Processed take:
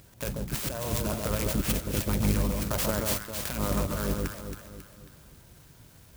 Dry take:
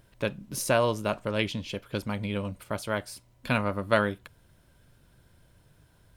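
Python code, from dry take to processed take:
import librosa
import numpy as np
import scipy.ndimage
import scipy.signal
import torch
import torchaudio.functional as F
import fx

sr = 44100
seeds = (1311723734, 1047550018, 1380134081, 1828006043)

y = fx.octave_divider(x, sr, octaves=2, level_db=3.0)
y = scipy.signal.sosfilt(scipy.signal.butter(2, 58.0, 'highpass', fs=sr, output='sos'), y)
y = fx.peak_eq(y, sr, hz=12000.0, db=12.5, octaves=2.4)
y = fx.over_compress(y, sr, threshold_db=-29.0, ratio=-1.0)
y = fx.filter_lfo_notch(y, sr, shape='sine', hz=2.8, low_hz=250.0, high_hz=3800.0, q=1.4)
y = fx.echo_alternate(y, sr, ms=136, hz=1200.0, feedback_pct=67, wet_db=-2.0)
y = fx.clock_jitter(y, sr, seeds[0], jitter_ms=0.09)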